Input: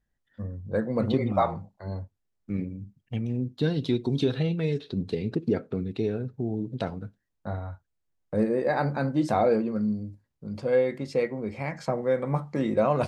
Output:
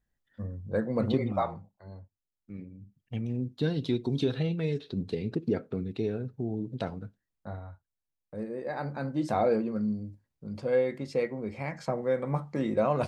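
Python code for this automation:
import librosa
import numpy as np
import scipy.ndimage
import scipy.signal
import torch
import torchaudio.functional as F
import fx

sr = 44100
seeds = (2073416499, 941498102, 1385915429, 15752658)

y = fx.gain(x, sr, db=fx.line((1.15, -2.0), (1.91, -12.0), (2.64, -12.0), (3.2, -3.0), (6.99, -3.0), (8.36, -12.5), (9.43, -3.0)))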